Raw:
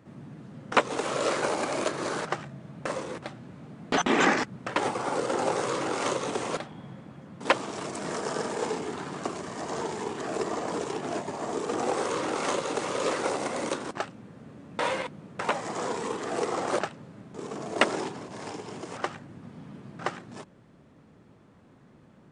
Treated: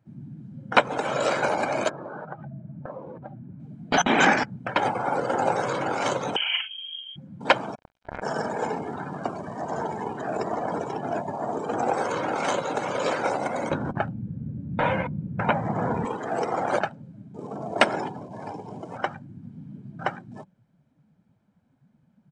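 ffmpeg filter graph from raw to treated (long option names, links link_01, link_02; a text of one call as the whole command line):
ffmpeg -i in.wav -filter_complex "[0:a]asettb=1/sr,asplit=3[link_01][link_02][link_03];[link_01]atrim=end=1.894[link_04];[link_02]atrim=start=1.89:end=3.6,asetpts=PTS-STARTPTS,afade=type=in:duration=0.004:curve=qsin,afade=type=out:start_time=1.706:duration=0.004:curve=qsin,lowpass=1700,acompressor=threshold=-37dB:ratio=3:attack=3.2:release=140:knee=1:detection=peak[link_05];[link_03]atrim=start=3.596[link_06];[link_04][link_05]acrossfade=duration=0.004:curve1=hsin:curve2=qsin[link_07];[link_07][link_06]acrossfade=duration=0.004:curve1=qsin:curve2=hsin,asettb=1/sr,asplit=3[link_08][link_09][link_10];[link_08]atrim=end=6.364[link_11];[link_09]atrim=start=6.36:end=7.16,asetpts=PTS-STARTPTS,afade=type=in:duration=0.004:curve=qsin,afade=type=out:start_time=0.796:duration=0.004:curve=qsin,asplit=2[link_12][link_13];[link_13]adelay=39,volume=-5.5dB[link_14];[link_12][link_14]amix=inputs=2:normalize=0,atrim=end_sample=35280,lowpass=frequency=2900:width_type=q:width=0.5098,lowpass=frequency=2900:width_type=q:width=0.6013,lowpass=frequency=2900:width_type=q:width=0.9,lowpass=frequency=2900:width_type=q:width=2.563,afreqshift=-3400[link_15];[link_10]atrim=start=7.156[link_16];[link_11][link_15]acrossfade=duration=0.004:curve1=hsin:curve2=qsin[link_17];[link_17][link_16]acrossfade=duration=0.004:curve1=qsin:curve2=hsin,asettb=1/sr,asplit=3[link_18][link_19][link_20];[link_18]atrim=end=7.754[link_21];[link_19]atrim=start=7.75:end=8.22,asetpts=PTS-STARTPTS,afade=type=in:duration=0.004:curve=qsin,afade=type=out:start_time=0.466:duration=0.004:curve=qsin,lowpass=1800,acrusher=bits=3:mix=0:aa=0.5,acontrast=64[link_22];[link_20]atrim=start=8.216[link_23];[link_21][link_22]acrossfade=duration=0.004:curve1=hsin:curve2=qsin[link_24];[link_24][link_23]acrossfade=duration=0.004:curve1=qsin:curve2=hsin,asettb=1/sr,asplit=3[link_25][link_26][link_27];[link_25]atrim=end=13.704[link_28];[link_26]atrim=start=13.7:end=16.05,asetpts=PTS-STARTPTS,afade=type=in:duration=0.004:curve=qsin,afade=type=out:start_time=2.346:duration=0.004:curve=qsin,lowpass=frequency=7700:width_type=q:width=1.7,bass=frequency=250:gain=13,treble=frequency=4000:gain=-13[link_29];[link_27]atrim=start=16.046[link_30];[link_28][link_29]acrossfade=duration=0.004:curve1=hsin:curve2=qsin[link_31];[link_31][link_30]acrossfade=duration=0.004:curve1=qsin:curve2=hsin,afftdn=noise_reduction=19:noise_floor=-39,aecho=1:1:1.3:0.44,volume=3.5dB" out.wav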